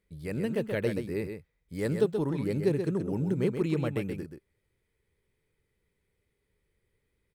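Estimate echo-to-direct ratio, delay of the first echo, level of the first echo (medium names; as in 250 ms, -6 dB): -7.0 dB, 129 ms, -7.0 dB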